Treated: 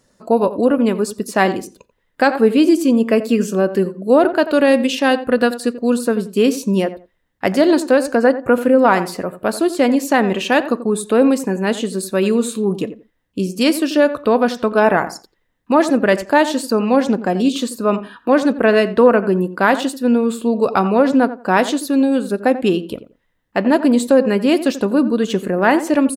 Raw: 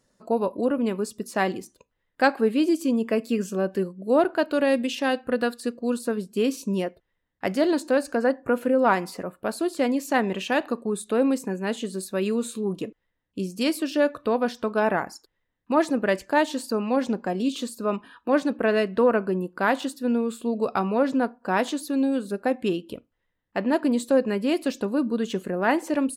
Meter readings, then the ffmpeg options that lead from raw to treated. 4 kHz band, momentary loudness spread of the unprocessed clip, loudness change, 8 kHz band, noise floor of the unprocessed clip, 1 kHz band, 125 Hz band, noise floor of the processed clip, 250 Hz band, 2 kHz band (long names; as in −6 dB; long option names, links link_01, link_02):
+9.0 dB, 8 LU, +9.0 dB, +9.0 dB, −77 dBFS, +8.5 dB, +9.0 dB, −66 dBFS, +9.0 dB, +8.5 dB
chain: -filter_complex "[0:a]asplit=2[link_01][link_02];[link_02]adelay=87,lowpass=frequency=1500:poles=1,volume=-13dB,asplit=2[link_03][link_04];[link_04]adelay=87,lowpass=frequency=1500:poles=1,volume=0.21[link_05];[link_03][link_05]amix=inputs=2:normalize=0[link_06];[link_01][link_06]amix=inputs=2:normalize=0,alimiter=level_in=10dB:limit=-1dB:release=50:level=0:latency=1,volume=-1dB"